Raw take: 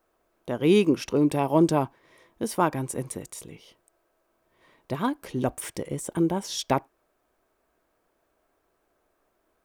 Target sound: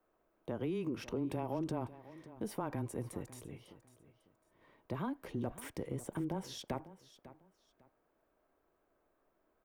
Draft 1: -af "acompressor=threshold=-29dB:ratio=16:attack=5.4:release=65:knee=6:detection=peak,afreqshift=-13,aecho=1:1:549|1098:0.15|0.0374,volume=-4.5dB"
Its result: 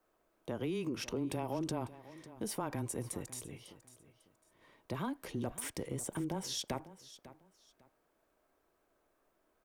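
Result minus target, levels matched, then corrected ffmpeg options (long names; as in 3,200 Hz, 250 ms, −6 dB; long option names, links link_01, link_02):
8,000 Hz band +9.0 dB
-af "acompressor=threshold=-29dB:ratio=16:attack=5.4:release=65:knee=6:detection=peak,equalizer=frequency=7600:width=0.39:gain=-11,afreqshift=-13,aecho=1:1:549|1098:0.15|0.0374,volume=-4.5dB"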